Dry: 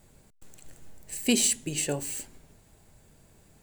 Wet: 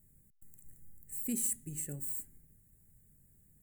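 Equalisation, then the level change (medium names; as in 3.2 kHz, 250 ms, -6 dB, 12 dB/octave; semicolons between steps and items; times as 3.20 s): FFT filter 170 Hz 0 dB, 1 kHz -23 dB, 1.9 kHz -9 dB, 2.8 kHz -22 dB, 5.2 kHz -20 dB, 8.2 kHz -1 dB, 14 kHz +9 dB; -7.0 dB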